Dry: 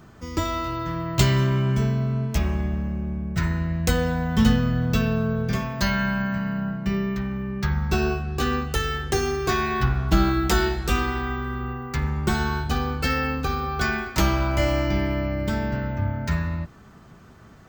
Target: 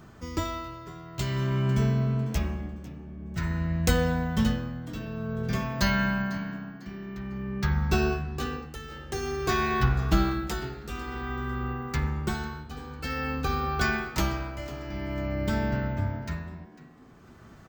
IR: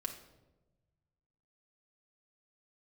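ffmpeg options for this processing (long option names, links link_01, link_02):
-filter_complex "[0:a]tremolo=f=0.51:d=0.82,asplit=4[link_01][link_02][link_03][link_04];[link_02]adelay=499,afreqshift=80,volume=-18.5dB[link_05];[link_03]adelay=998,afreqshift=160,volume=-28.4dB[link_06];[link_04]adelay=1497,afreqshift=240,volume=-38.3dB[link_07];[link_01][link_05][link_06][link_07]amix=inputs=4:normalize=0,volume=-1.5dB"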